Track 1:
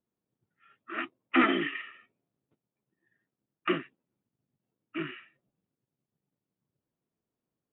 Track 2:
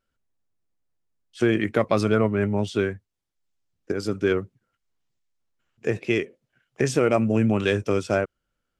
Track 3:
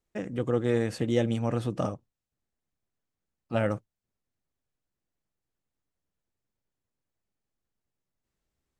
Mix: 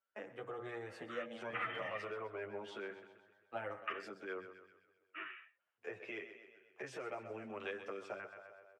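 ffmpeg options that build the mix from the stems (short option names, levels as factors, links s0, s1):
-filter_complex "[0:a]highpass=f=860:p=1,adelay=200,volume=1[s0];[1:a]highpass=91,alimiter=limit=0.141:level=0:latency=1:release=163,volume=0.631,asplit=2[s1][s2];[s2]volume=0.237[s3];[2:a]agate=range=0.1:threshold=0.01:ratio=16:detection=peak,bandreject=f=60.18:t=h:w=4,bandreject=f=120.36:t=h:w=4,bandreject=f=180.54:t=h:w=4,bandreject=f=240.72:t=h:w=4,bandreject=f=300.9:t=h:w=4,bandreject=f=361.08:t=h:w=4,bandreject=f=421.26:t=h:w=4,bandreject=f=481.44:t=h:w=4,bandreject=f=541.62:t=h:w=4,bandreject=f=601.8:t=h:w=4,bandreject=f=661.98:t=h:w=4,bandreject=f=722.16:t=h:w=4,bandreject=f=782.34:t=h:w=4,bandreject=f=842.52:t=h:w=4,bandreject=f=902.7:t=h:w=4,bandreject=f=962.88:t=h:w=4,bandreject=f=1023.06:t=h:w=4,bandreject=f=1083.24:t=h:w=4,bandreject=f=1143.42:t=h:w=4,bandreject=f=1203.6:t=h:w=4,bandreject=f=1263.78:t=h:w=4,bandreject=f=1323.96:t=h:w=4,bandreject=f=1384.14:t=h:w=4,bandreject=f=1444.32:t=h:w=4,bandreject=f=1504.5:t=h:w=4,bandreject=f=1564.68:t=h:w=4,bandreject=f=1624.86:t=h:w=4,bandreject=f=1685.04:t=h:w=4,bandreject=f=1745.22:t=h:w=4,bandreject=f=1805.4:t=h:w=4,bandreject=f=1865.58:t=h:w=4,bandreject=f=1925.76:t=h:w=4,bandreject=f=1985.94:t=h:w=4,bandreject=f=2046.12:t=h:w=4,bandreject=f=2106.3:t=h:w=4,bandreject=f=2166.48:t=h:w=4,bandreject=f=2226.66:t=h:w=4,bandreject=f=2286.84:t=h:w=4,bandreject=f=2347.02:t=h:w=4,bandreject=f=2407.2:t=h:w=4,volume=0.841,asplit=2[s4][s5];[s5]volume=0.133[s6];[s3][s6]amix=inputs=2:normalize=0,aecho=0:1:129|258|387|516|645|774|903|1032:1|0.55|0.303|0.166|0.0915|0.0503|0.0277|0.0152[s7];[s0][s1][s4][s7]amix=inputs=4:normalize=0,acrossover=split=180[s8][s9];[s9]acompressor=threshold=0.0282:ratio=6[s10];[s8][s10]amix=inputs=2:normalize=0,acrossover=split=490 2800:gain=0.0794 1 0.158[s11][s12][s13];[s11][s12][s13]amix=inputs=3:normalize=0,asplit=2[s14][s15];[s15]adelay=9.9,afreqshift=-0.79[s16];[s14][s16]amix=inputs=2:normalize=1"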